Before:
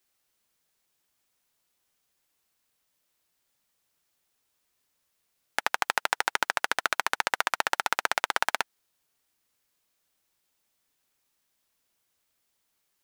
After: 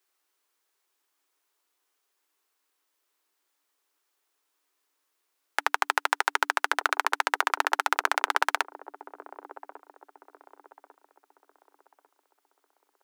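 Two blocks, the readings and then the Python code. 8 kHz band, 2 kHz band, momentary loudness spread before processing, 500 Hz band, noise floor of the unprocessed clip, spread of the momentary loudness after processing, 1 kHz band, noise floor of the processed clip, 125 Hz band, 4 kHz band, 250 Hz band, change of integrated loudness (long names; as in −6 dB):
−2.0 dB, +1.5 dB, 4 LU, −0.5 dB, −77 dBFS, 20 LU, +3.0 dB, −78 dBFS, can't be measured, −1.5 dB, −0.5 dB, +1.5 dB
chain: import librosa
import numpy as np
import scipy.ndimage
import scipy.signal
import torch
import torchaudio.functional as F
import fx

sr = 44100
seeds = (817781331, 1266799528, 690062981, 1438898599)

y = scipy.signal.sosfilt(scipy.signal.cheby1(6, 6, 280.0, 'highpass', fs=sr, output='sos'), x)
y = fx.echo_wet_lowpass(y, sr, ms=1147, feedback_pct=35, hz=460.0, wet_db=-5.5)
y = F.gain(torch.from_numpy(y), 4.0).numpy()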